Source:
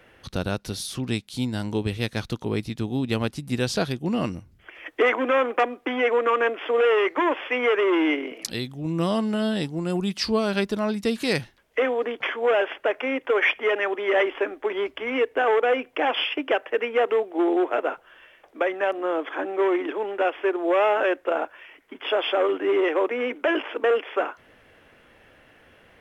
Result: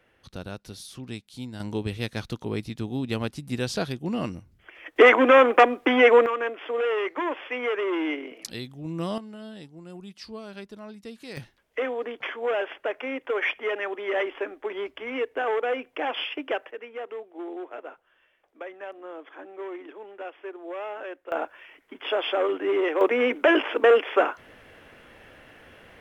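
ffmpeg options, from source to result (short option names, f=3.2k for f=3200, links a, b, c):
-af "asetnsamples=n=441:p=0,asendcmd='1.6 volume volume -3.5dB;4.96 volume volume 6dB;6.26 volume volume -6dB;9.18 volume volume -16.5dB;11.37 volume volume -5.5dB;16.71 volume volume -14.5dB;21.32 volume volume -2.5dB;23.01 volume volume 4dB',volume=-10dB"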